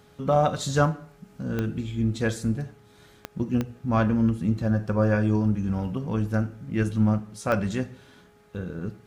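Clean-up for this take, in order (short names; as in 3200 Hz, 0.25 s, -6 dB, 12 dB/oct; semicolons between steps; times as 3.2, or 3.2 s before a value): de-click; de-hum 417.1 Hz, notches 3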